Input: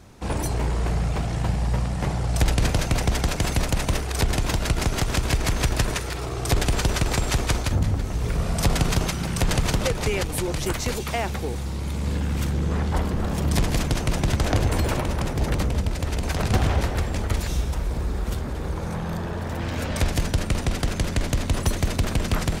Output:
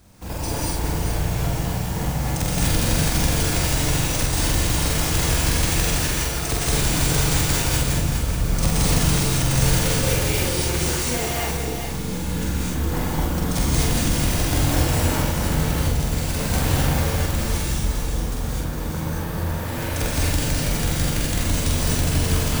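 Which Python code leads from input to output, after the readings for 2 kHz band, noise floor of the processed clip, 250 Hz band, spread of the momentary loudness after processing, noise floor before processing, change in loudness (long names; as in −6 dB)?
+3.0 dB, −27 dBFS, +2.5 dB, 7 LU, −30 dBFS, +3.5 dB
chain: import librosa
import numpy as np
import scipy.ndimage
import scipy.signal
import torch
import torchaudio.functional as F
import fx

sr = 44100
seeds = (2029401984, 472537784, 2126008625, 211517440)

y = fx.low_shelf(x, sr, hz=210.0, db=3.0)
y = fx.notch(y, sr, hz=400.0, q=12.0)
y = np.repeat(y[::3], 3)[:len(y)]
y = fx.high_shelf(y, sr, hz=5200.0, db=10.0)
y = fx.doubler(y, sr, ms=45.0, db=-3.0)
y = y + 10.0 ** (-7.0 / 20.0) * np.pad(y, (int(412 * sr / 1000.0), 0))[:len(y)]
y = fx.rev_gated(y, sr, seeds[0], gate_ms=280, shape='rising', drr_db=-5.5)
y = y * 10.0 ** (-7.5 / 20.0)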